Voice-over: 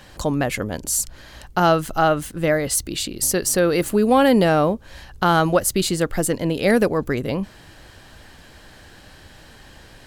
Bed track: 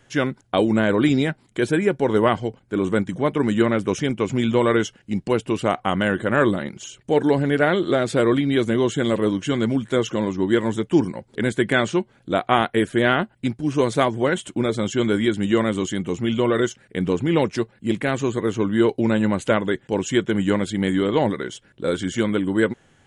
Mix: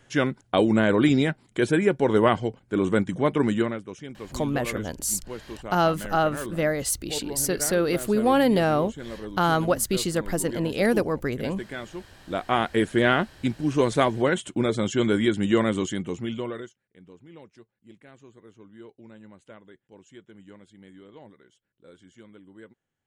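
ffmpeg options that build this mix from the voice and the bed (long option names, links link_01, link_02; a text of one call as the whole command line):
ffmpeg -i stem1.wav -i stem2.wav -filter_complex "[0:a]adelay=4150,volume=-5dB[link_01];[1:a]volume=13dB,afade=type=out:start_time=3.43:duration=0.39:silence=0.177828,afade=type=in:start_time=12:duration=0.89:silence=0.188365,afade=type=out:start_time=15.73:duration=1.01:silence=0.0501187[link_02];[link_01][link_02]amix=inputs=2:normalize=0" out.wav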